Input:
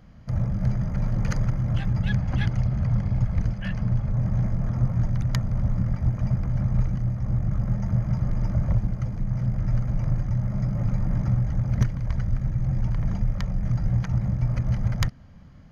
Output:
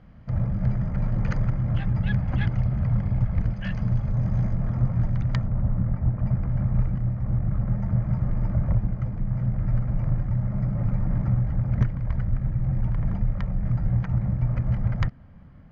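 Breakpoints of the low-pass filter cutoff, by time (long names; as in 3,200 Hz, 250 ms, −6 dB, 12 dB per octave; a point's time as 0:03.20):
3,000 Hz
from 0:03.56 5,600 Hz
from 0:04.54 3,300 Hz
from 0:05.47 1,600 Hz
from 0:06.26 2,300 Hz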